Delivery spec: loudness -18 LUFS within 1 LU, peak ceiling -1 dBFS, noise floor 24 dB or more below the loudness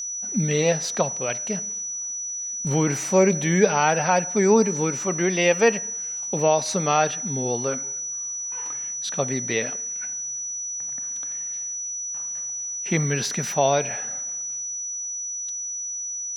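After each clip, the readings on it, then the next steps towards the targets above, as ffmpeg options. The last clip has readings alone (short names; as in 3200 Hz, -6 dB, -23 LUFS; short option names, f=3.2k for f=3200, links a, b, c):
steady tone 5900 Hz; tone level -28 dBFS; loudness -23.5 LUFS; peak -5.0 dBFS; loudness target -18.0 LUFS
-> -af "bandreject=f=5.9k:w=30"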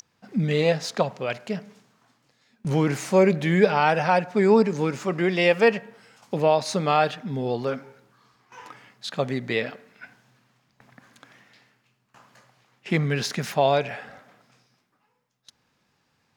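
steady tone none; loudness -23.5 LUFS; peak -5.0 dBFS; loudness target -18.0 LUFS
-> -af "volume=5.5dB,alimiter=limit=-1dB:level=0:latency=1"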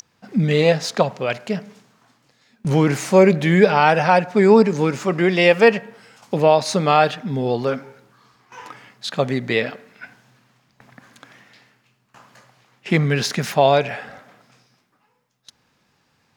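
loudness -18.0 LUFS; peak -1.0 dBFS; noise floor -65 dBFS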